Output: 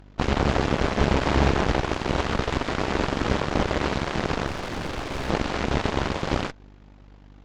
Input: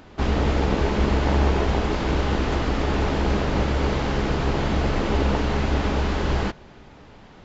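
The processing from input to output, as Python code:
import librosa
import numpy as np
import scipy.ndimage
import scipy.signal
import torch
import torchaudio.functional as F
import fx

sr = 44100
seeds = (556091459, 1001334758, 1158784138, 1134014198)

y = fx.add_hum(x, sr, base_hz=50, snr_db=15)
y = fx.cheby_harmonics(y, sr, harmonics=(7, 8), levels_db=(-15, -19), full_scale_db=-6.5)
y = fx.clip_hard(y, sr, threshold_db=-26.0, at=(4.46, 5.3))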